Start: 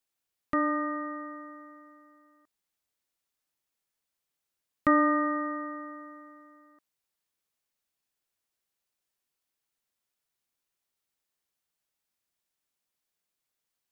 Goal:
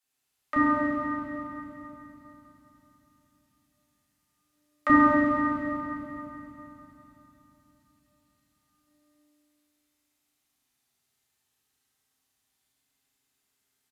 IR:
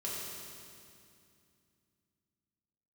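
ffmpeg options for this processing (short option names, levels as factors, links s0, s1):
-filter_complex "[0:a]acrossover=split=500[s0][s1];[s0]adelay=30[s2];[s2][s1]amix=inputs=2:normalize=0[s3];[1:a]atrim=start_sample=2205,asetrate=29106,aresample=44100[s4];[s3][s4]afir=irnorm=-1:irlink=0,volume=1.5"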